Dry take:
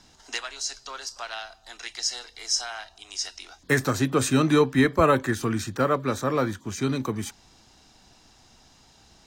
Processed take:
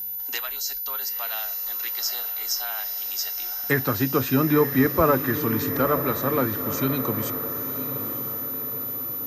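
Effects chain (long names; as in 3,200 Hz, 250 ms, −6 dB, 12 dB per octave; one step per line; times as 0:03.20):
treble cut that deepens with the level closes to 1,800 Hz, closed at −16 dBFS
steady tone 14,000 Hz −29 dBFS
feedback delay with all-pass diffusion 943 ms, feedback 54%, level −9.5 dB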